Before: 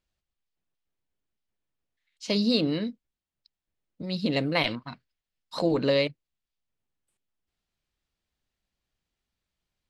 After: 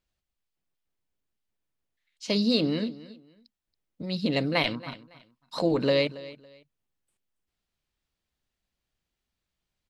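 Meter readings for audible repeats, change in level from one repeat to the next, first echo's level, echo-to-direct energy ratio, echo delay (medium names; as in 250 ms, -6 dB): 2, -12.0 dB, -18.0 dB, -17.5 dB, 278 ms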